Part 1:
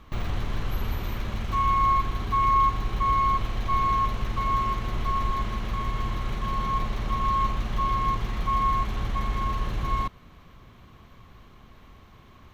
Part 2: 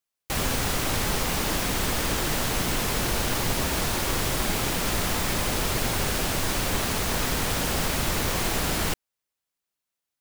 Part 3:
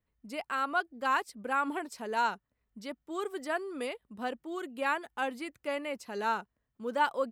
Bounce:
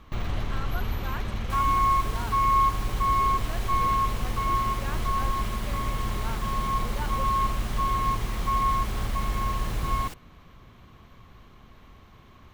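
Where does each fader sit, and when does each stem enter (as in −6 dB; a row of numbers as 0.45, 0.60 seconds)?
−0.5, −15.5, −9.5 decibels; 0.00, 1.20, 0.00 seconds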